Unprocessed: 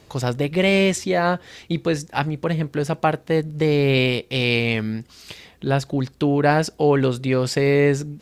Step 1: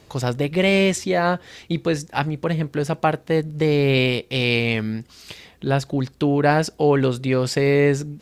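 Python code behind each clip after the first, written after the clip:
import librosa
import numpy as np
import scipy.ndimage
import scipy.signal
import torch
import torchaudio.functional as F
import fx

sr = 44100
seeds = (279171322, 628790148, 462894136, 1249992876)

y = x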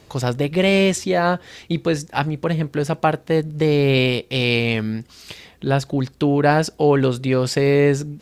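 y = fx.dynamic_eq(x, sr, hz=2100.0, q=6.1, threshold_db=-40.0, ratio=4.0, max_db=-4)
y = y * librosa.db_to_amplitude(1.5)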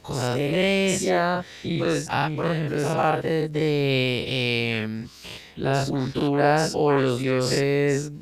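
y = fx.spec_dilate(x, sr, span_ms=120)
y = y * librosa.db_to_amplitude(-7.5)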